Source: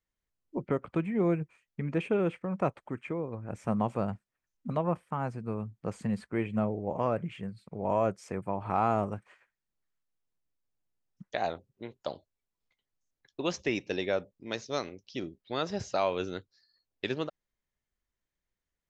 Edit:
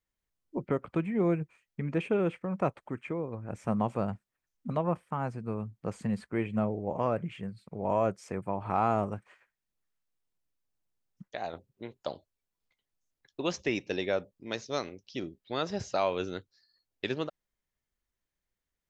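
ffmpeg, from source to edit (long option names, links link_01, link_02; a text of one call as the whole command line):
ffmpeg -i in.wav -filter_complex "[0:a]asplit=3[link_01][link_02][link_03];[link_01]atrim=end=11.282[link_04];[link_02]atrim=start=11.278:end=11.532,asetpts=PTS-STARTPTS,volume=-5.5dB[link_05];[link_03]atrim=start=11.528[link_06];[link_04][link_05]acrossfade=duration=0.004:curve1=hsin:curve2=hsin[link_07];[link_07][link_06]acrossfade=duration=0.004:curve1=hsin:curve2=hsin" out.wav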